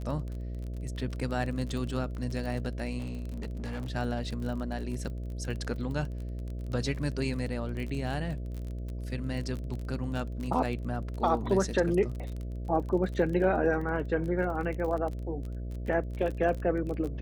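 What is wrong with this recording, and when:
buzz 60 Hz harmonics 11 -36 dBFS
crackle 31/s -35 dBFS
2.98–3.92 clipped -32 dBFS

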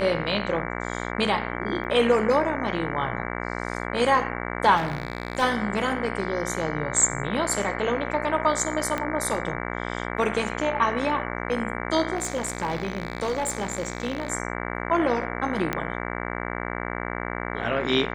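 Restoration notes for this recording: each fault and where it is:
buzz 60 Hz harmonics 38 -31 dBFS
1.84–1.85 gap 8.7 ms
4.76–5.43 clipped -21 dBFS
8.98 pop -13 dBFS
12.15–14.3 clipped -21.5 dBFS
15.73 pop -11 dBFS

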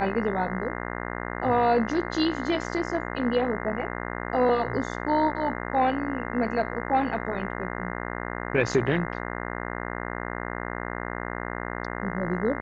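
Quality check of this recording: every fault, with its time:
buzz 60 Hz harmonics 35 -33 dBFS

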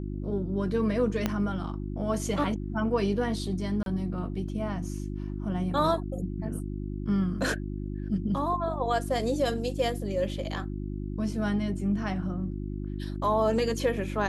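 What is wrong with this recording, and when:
hum 50 Hz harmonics 7 -34 dBFS
1.26 pop -12 dBFS
3.83–3.86 gap 32 ms

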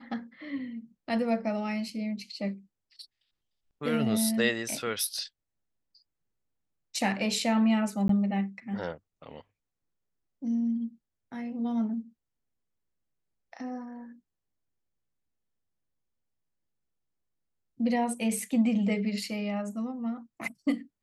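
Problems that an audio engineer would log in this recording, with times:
8.08–8.09 gap 13 ms

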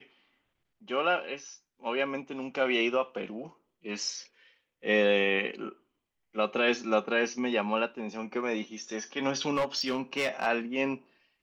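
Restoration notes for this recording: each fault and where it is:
9.54–10.47 clipped -23.5 dBFS

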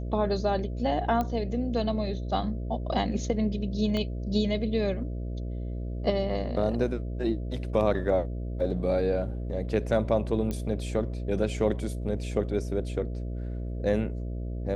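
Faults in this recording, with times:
buzz 60 Hz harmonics 11 -33 dBFS
1.21 pop -17 dBFS
3.97 pop -18 dBFS
10.51 pop -19 dBFS

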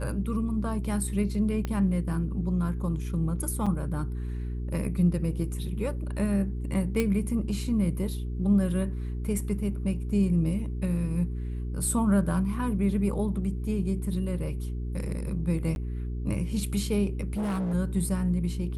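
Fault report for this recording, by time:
hum 60 Hz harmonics 7 -32 dBFS
1.65 pop -18 dBFS
3.66–3.67 gap 5.3 ms
7 pop -13 dBFS
15.75–15.76 gap 11 ms
17.33–17.75 clipped -26.5 dBFS

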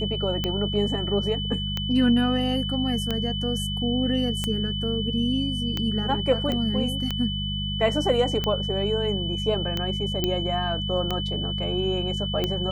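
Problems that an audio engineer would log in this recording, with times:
hum 50 Hz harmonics 4 -30 dBFS
tick 45 rpm -12 dBFS
tone 3000 Hz -30 dBFS
6.52 pop -15 dBFS
10.24 pop -10 dBFS

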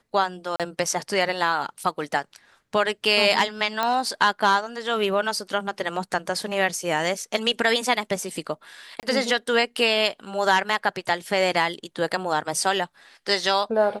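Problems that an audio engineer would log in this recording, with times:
0.56–0.6 gap 37 ms
3.83 pop -10 dBFS
9–9.03 gap 28 ms

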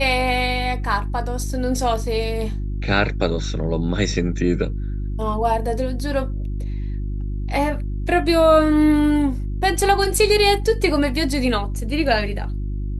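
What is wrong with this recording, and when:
hum 50 Hz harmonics 7 -25 dBFS

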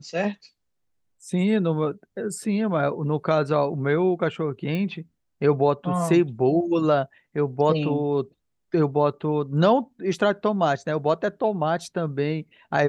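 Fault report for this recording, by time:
4.75 pop -18 dBFS

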